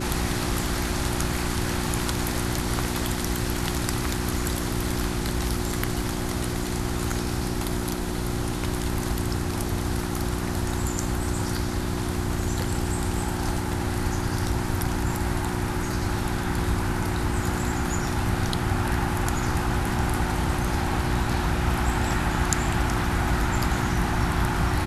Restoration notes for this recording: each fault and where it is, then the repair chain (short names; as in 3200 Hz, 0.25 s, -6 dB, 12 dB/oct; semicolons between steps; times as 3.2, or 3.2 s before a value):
hum 60 Hz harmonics 6 -30 dBFS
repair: de-hum 60 Hz, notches 6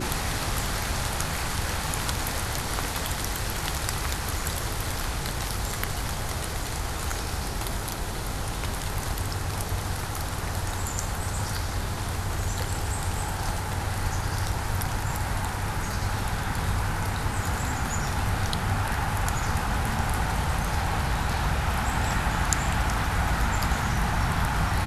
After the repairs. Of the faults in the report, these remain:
none